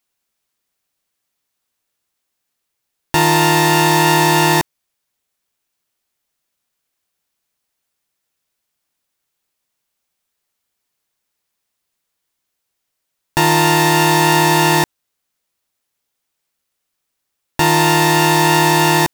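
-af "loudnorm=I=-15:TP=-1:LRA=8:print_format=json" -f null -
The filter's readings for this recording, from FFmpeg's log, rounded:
"input_i" : "-12.9",
"input_tp" : "-0.7",
"input_lra" : "4.0",
"input_thresh" : "-23.1",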